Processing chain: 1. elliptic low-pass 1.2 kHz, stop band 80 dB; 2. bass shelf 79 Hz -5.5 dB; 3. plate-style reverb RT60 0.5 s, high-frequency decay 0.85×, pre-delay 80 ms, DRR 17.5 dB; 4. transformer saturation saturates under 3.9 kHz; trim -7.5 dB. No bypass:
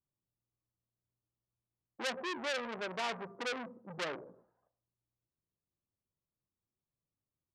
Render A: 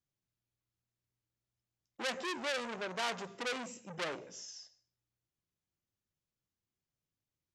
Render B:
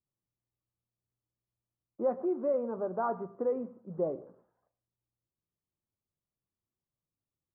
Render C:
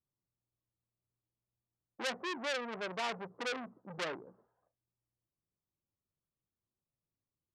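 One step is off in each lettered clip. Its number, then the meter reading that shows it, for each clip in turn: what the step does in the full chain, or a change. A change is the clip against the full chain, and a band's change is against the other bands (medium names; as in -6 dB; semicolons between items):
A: 1, momentary loudness spread change +2 LU; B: 4, crest factor change -6.0 dB; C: 3, momentary loudness spread change -3 LU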